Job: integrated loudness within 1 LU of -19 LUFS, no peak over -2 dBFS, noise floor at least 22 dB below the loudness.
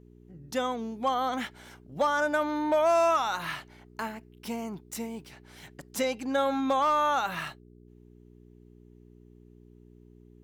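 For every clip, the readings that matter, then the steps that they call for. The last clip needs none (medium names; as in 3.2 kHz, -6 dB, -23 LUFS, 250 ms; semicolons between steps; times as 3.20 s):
clipped samples 0.3%; clipping level -18.0 dBFS; hum 60 Hz; highest harmonic 420 Hz; hum level -48 dBFS; loudness -29.0 LUFS; peak level -18.0 dBFS; loudness target -19.0 LUFS
-> clip repair -18 dBFS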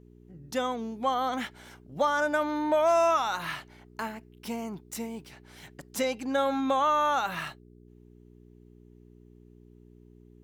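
clipped samples 0.0%; hum 60 Hz; highest harmonic 420 Hz; hum level -48 dBFS
-> de-hum 60 Hz, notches 7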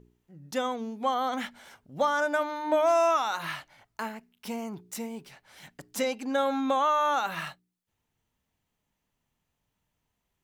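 hum not found; loudness -28.5 LUFS; peak level -14.5 dBFS; loudness target -19.0 LUFS
-> trim +9.5 dB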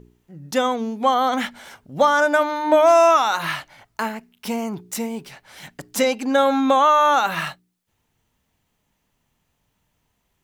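loudness -19.0 LUFS; peak level -5.0 dBFS; noise floor -72 dBFS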